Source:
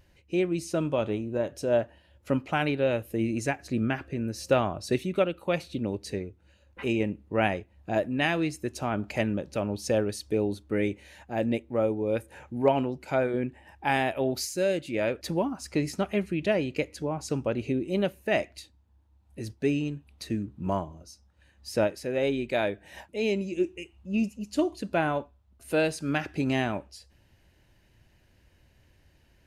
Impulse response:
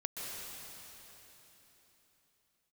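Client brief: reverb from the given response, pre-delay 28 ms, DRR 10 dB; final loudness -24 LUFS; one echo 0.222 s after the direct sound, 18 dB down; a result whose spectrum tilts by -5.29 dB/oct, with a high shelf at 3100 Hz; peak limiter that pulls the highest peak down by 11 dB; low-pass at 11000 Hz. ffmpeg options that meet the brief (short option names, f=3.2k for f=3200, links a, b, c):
-filter_complex "[0:a]lowpass=11k,highshelf=f=3.1k:g=3.5,alimiter=limit=-20dB:level=0:latency=1,aecho=1:1:222:0.126,asplit=2[a][b];[1:a]atrim=start_sample=2205,adelay=28[c];[b][c]afir=irnorm=-1:irlink=0,volume=-12dB[d];[a][d]amix=inputs=2:normalize=0,volume=7.5dB"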